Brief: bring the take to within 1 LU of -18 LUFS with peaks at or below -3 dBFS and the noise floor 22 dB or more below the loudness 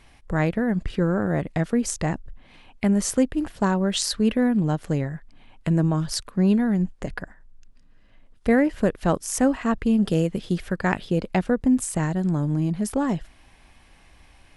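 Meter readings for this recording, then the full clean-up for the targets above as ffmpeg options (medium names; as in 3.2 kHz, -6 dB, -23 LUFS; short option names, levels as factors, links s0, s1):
loudness -23.5 LUFS; peak level -5.5 dBFS; loudness target -18.0 LUFS
-> -af "volume=1.88,alimiter=limit=0.708:level=0:latency=1"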